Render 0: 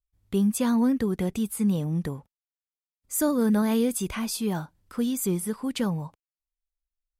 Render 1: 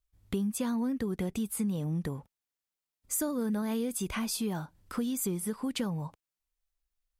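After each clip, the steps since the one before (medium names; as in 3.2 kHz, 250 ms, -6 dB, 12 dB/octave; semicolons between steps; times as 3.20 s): compression 4:1, threshold -35 dBFS, peak gain reduction 13.5 dB; trim +4 dB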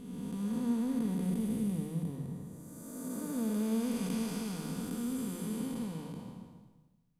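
spectral blur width 793 ms; reverberation RT60 0.85 s, pre-delay 4 ms, DRR 4.5 dB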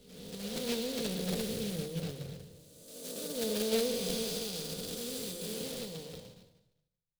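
block-companded coder 3-bit; ten-band graphic EQ 250 Hz -12 dB, 500 Hz +12 dB, 1 kHz -11 dB, 2 kHz -4 dB, 4 kHz +10 dB; three bands expanded up and down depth 70%; trim +1.5 dB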